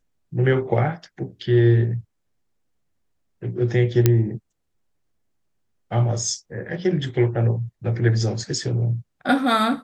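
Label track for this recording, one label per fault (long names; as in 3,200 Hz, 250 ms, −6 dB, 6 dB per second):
4.060000	4.060000	click −2 dBFS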